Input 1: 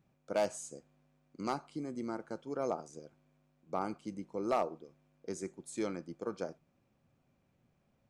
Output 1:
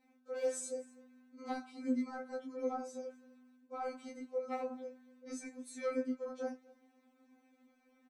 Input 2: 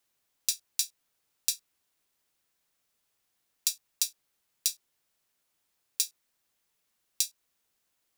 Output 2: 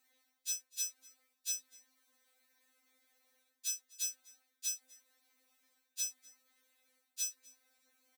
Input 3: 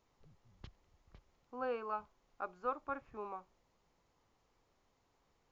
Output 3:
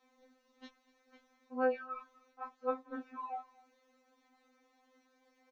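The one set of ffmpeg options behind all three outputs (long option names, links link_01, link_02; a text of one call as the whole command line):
ffmpeg -i in.wav -filter_complex "[0:a]highpass=frequency=370:poles=1,highshelf=frequency=2900:gain=-9,areverse,acompressor=threshold=-44dB:ratio=10,areverse,asplit=2[link_01][link_02];[link_02]adelay=16,volume=-3dB[link_03];[link_01][link_03]amix=inputs=2:normalize=0,asplit=2[link_04][link_05];[link_05]aecho=0:1:250:0.0668[link_06];[link_04][link_06]amix=inputs=2:normalize=0,afftfilt=real='re*3.46*eq(mod(b,12),0)':imag='im*3.46*eq(mod(b,12),0)':win_size=2048:overlap=0.75,volume=11dB" out.wav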